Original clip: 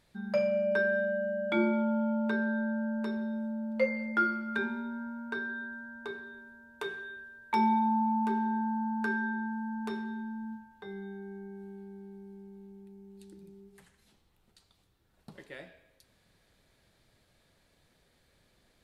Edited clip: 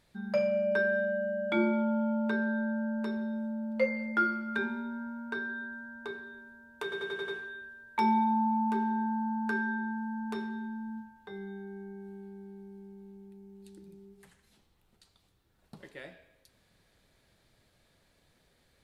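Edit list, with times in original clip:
6.83 stutter 0.09 s, 6 plays

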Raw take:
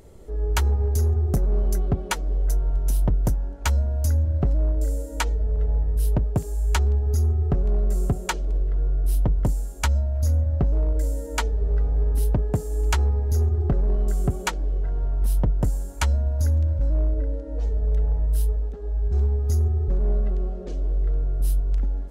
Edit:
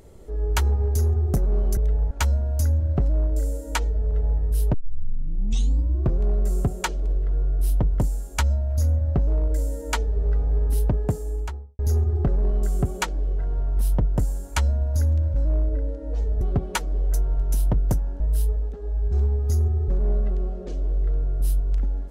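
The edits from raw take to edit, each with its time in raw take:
1.77–3.56 swap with 17.86–18.2
6.19 tape start 1.48 s
12.5–13.24 studio fade out

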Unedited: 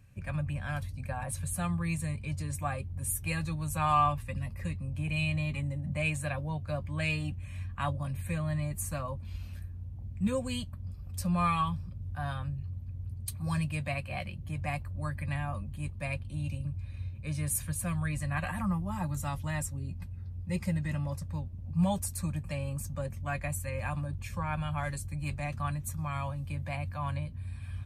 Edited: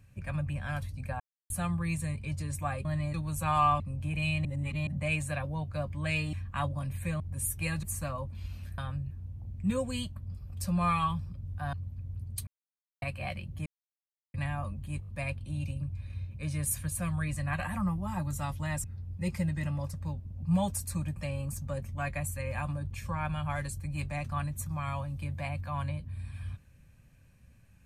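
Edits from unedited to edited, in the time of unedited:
1.2–1.5 mute
2.85–3.48 swap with 8.44–8.73
4.14–4.74 cut
5.39–5.81 reverse
7.27–7.57 cut
12.3–12.63 move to 9.68
13.37–13.92 mute
14.56–15.24 mute
15.91 stutter 0.02 s, 4 plays
19.68–20.12 cut

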